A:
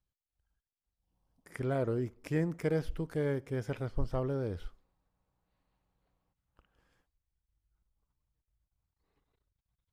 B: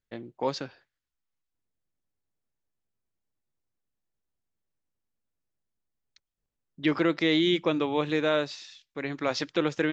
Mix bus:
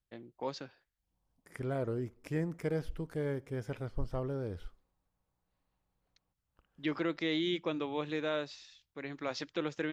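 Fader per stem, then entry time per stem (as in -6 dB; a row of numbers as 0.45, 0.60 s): -3.0, -9.0 dB; 0.00, 0.00 s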